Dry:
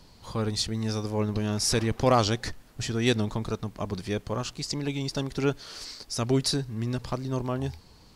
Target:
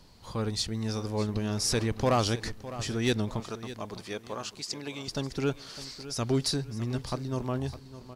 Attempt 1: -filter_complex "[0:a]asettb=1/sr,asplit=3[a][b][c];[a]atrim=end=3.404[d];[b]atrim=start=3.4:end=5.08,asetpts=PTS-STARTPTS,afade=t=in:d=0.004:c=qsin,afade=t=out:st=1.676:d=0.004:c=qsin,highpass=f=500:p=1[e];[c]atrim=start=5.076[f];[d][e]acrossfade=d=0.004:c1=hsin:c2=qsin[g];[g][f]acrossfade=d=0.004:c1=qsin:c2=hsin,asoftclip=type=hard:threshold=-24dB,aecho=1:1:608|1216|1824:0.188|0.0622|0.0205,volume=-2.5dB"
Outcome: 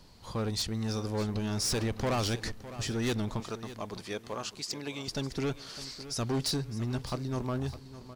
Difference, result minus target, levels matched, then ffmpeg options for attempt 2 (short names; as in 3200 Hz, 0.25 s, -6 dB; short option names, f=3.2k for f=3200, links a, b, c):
hard clip: distortion +12 dB
-filter_complex "[0:a]asettb=1/sr,asplit=3[a][b][c];[a]atrim=end=3.404[d];[b]atrim=start=3.4:end=5.08,asetpts=PTS-STARTPTS,afade=t=in:d=0.004:c=qsin,afade=t=out:st=1.676:d=0.004:c=qsin,highpass=f=500:p=1[e];[c]atrim=start=5.076[f];[d][e]acrossfade=d=0.004:c1=hsin:c2=qsin[g];[g][f]acrossfade=d=0.004:c1=qsin:c2=hsin,asoftclip=type=hard:threshold=-16dB,aecho=1:1:608|1216|1824:0.188|0.0622|0.0205,volume=-2.5dB"